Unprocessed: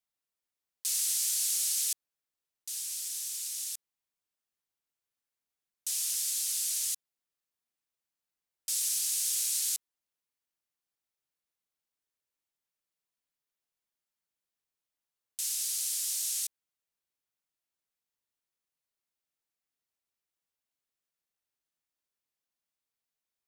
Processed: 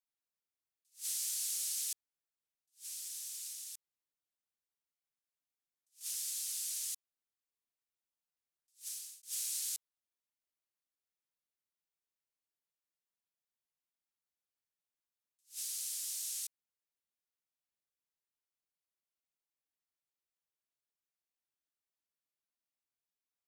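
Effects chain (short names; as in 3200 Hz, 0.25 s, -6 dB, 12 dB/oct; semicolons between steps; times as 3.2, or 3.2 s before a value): 3.51–6.01 compressor, threshold -35 dBFS, peak gain reduction 6 dB; 8.69–9.23 fade out; attack slew limiter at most 270 dB/s; gain -7.5 dB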